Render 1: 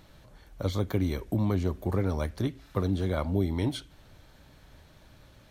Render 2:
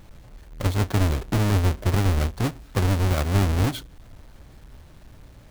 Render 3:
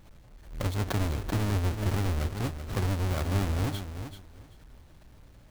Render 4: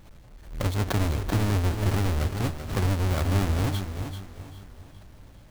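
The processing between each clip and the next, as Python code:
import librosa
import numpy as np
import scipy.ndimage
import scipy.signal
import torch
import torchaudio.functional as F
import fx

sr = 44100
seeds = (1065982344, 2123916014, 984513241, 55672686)

y1 = fx.halfwave_hold(x, sr)
y1 = fx.low_shelf(y1, sr, hz=67.0, db=6.5)
y2 = fx.echo_feedback(y1, sr, ms=385, feedback_pct=19, wet_db=-9.5)
y2 = fx.pre_swell(y2, sr, db_per_s=110.0)
y2 = y2 * 10.0 ** (-7.5 / 20.0)
y3 = fx.echo_feedback(y2, sr, ms=406, feedback_pct=47, wet_db=-14.0)
y3 = y3 * 10.0 ** (3.5 / 20.0)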